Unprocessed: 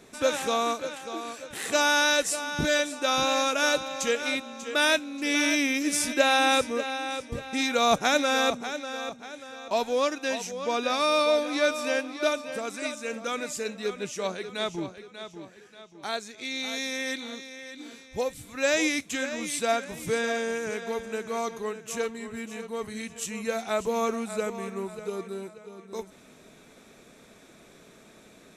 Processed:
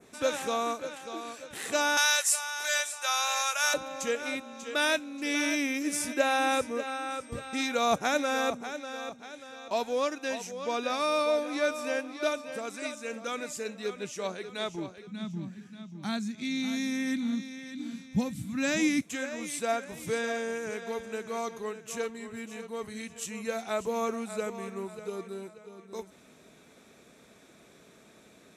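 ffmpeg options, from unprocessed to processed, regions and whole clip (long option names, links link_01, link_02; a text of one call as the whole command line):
ffmpeg -i in.wav -filter_complex "[0:a]asettb=1/sr,asplit=3[link_01][link_02][link_03];[link_01]atrim=end=1.974[link_04];[link_02]atrim=start=1.97:end=3.74,asetpts=PTS-STARTPTS,afade=type=in:duration=0.004:curve=qsin,afade=type=out:start_time=1.766:duration=0.004:curve=qsin,highpass=frequency=740:width=0.5412,highpass=frequency=740:width=1.3066,highshelf=frequency=2700:gain=10[link_05];[link_03]atrim=start=3.736[link_06];[link_04][link_05]acrossfade=duration=0.004:curve1=hsin:curve2=qsin[link_07];[link_07][link_06]acrossfade=duration=0.004:curve1=qsin:curve2=hsin,asettb=1/sr,asplit=3[link_08][link_09][link_10];[link_08]atrim=end=6.874[link_11];[link_09]atrim=start=6.87:end=7.65,asetpts=PTS-STARTPTS,afade=type=in:duration=0.004:curve=qsin,afade=type=out:start_time=0.776:duration=0.004:curve=qsin,equalizer=frequency=1300:width_type=o:width=0.22:gain=8,aeval=exprs='val(0)+0.00316*sin(2*PI*8400*n/s)':channel_layout=same[link_12];[link_10]atrim=start=7.646[link_13];[link_11][link_12]acrossfade=duration=0.004:curve1=hsin:curve2=qsin[link_14];[link_14][link_13]acrossfade=duration=0.004:curve1=qsin:curve2=hsin,asettb=1/sr,asplit=3[link_15][link_16][link_17];[link_15]atrim=end=15.074[link_18];[link_16]atrim=start=15.07:end=19.02,asetpts=PTS-STARTPTS,afade=type=in:duration=0.004:curve=qsin,afade=type=out:start_time=3.946:duration=0.004:curve=qsin,highpass=130,lowshelf=frequency=300:width_type=q:width=3:gain=13.5[link_19];[link_17]atrim=start=19.016[link_20];[link_18][link_19]acrossfade=duration=0.004:curve1=hsin:curve2=qsin[link_21];[link_21][link_20]acrossfade=duration=0.004:curve1=qsin:curve2=hsin,highpass=51,adynamicequalizer=threshold=0.00794:dfrequency=3900:dqfactor=1.1:tfrequency=3900:tqfactor=1.1:attack=5:release=100:ratio=0.375:range=3.5:mode=cutabove:tftype=bell,volume=-3.5dB" out.wav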